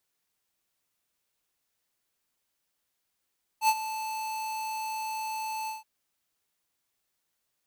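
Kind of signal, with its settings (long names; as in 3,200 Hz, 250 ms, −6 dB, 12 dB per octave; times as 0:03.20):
note with an ADSR envelope square 876 Hz, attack 75 ms, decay 52 ms, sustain −13.5 dB, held 2.07 s, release 154 ms −20.5 dBFS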